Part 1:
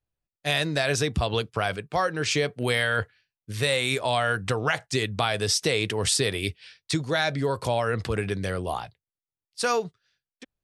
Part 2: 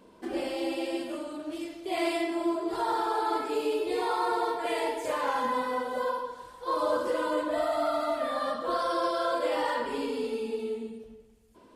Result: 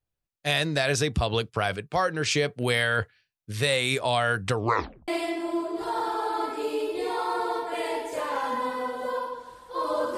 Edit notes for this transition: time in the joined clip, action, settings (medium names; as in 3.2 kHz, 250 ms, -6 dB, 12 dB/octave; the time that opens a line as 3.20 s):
part 1
4.58 s: tape stop 0.50 s
5.08 s: go over to part 2 from 2.00 s